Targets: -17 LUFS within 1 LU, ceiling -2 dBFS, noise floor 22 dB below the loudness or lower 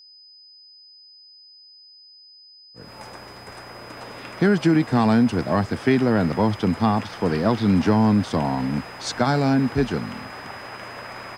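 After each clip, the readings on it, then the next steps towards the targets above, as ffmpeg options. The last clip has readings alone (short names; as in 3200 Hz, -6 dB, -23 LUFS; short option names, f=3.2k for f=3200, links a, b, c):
steady tone 5000 Hz; tone level -46 dBFS; loudness -21.0 LUFS; peak -7.0 dBFS; loudness target -17.0 LUFS
-> -af "bandreject=f=5k:w=30"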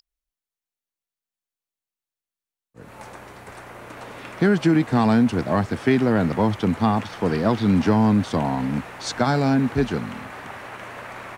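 steady tone none; loudness -21.0 LUFS; peak -7.0 dBFS; loudness target -17.0 LUFS
-> -af "volume=4dB"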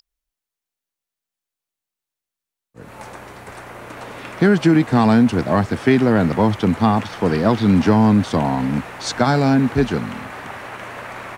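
loudness -17.0 LUFS; peak -3.0 dBFS; noise floor -87 dBFS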